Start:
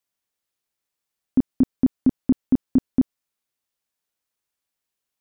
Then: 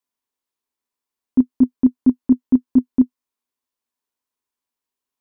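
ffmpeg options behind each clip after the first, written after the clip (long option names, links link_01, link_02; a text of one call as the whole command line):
ffmpeg -i in.wav -af "equalizer=frequency=160:width_type=o:width=0.33:gain=-11,equalizer=frequency=250:width_type=o:width=0.33:gain=11,equalizer=frequency=400:width_type=o:width=0.33:gain=6,equalizer=frequency=1000:width_type=o:width=0.33:gain=10,volume=-4.5dB" out.wav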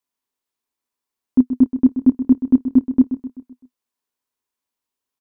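ffmpeg -i in.wav -af "aecho=1:1:128|256|384|512|640:0.282|0.138|0.0677|0.0332|0.0162,volume=1dB" out.wav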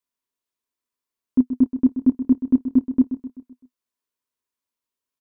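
ffmpeg -i in.wav -af "asuperstop=centerf=800:order=8:qfactor=6.1,volume=-3.5dB" out.wav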